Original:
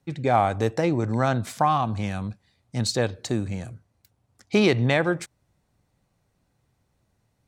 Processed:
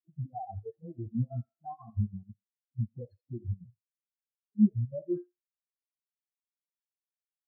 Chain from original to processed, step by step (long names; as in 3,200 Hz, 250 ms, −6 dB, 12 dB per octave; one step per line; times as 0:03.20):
every frequency bin delayed by itself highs late, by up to 419 ms
low-pass that shuts in the quiet parts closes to 1,700 Hz, open at −18.5 dBFS
high-pass filter 110 Hz 6 dB per octave
spectral tilt −2 dB per octave
brickwall limiter −20.5 dBFS, peak gain reduction 11.5 dB
pitch-shifted copies added +12 semitones −11 dB
soft clipping −23 dBFS, distortion −17 dB
square-wave tremolo 6.1 Hz, depth 65%, duty 60%
feedback echo with a high-pass in the loop 82 ms, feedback 63%, high-pass 400 Hz, level −6 dB
convolution reverb RT60 0.35 s, pre-delay 5 ms, DRR 7.5 dB
every bin expanded away from the loudest bin 4 to 1
level +6 dB